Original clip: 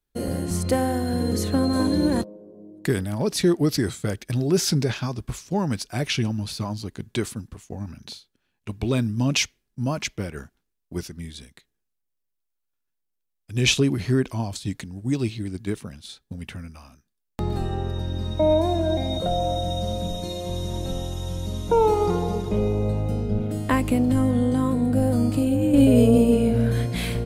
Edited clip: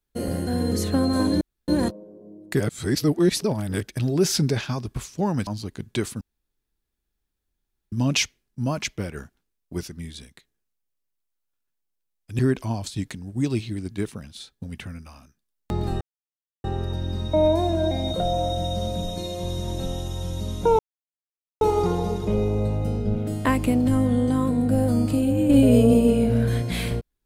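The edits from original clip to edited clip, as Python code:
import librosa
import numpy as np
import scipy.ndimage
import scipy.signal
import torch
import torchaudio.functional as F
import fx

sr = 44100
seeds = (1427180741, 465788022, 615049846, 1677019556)

y = fx.edit(x, sr, fx.cut(start_s=0.47, length_s=0.6),
    fx.insert_room_tone(at_s=2.01, length_s=0.27),
    fx.reverse_span(start_s=2.93, length_s=1.2),
    fx.cut(start_s=5.8, length_s=0.87),
    fx.room_tone_fill(start_s=7.41, length_s=1.71),
    fx.cut(start_s=13.59, length_s=0.49),
    fx.insert_silence(at_s=17.7, length_s=0.63),
    fx.insert_silence(at_s=21.85, length_s=0.82), tone=tone)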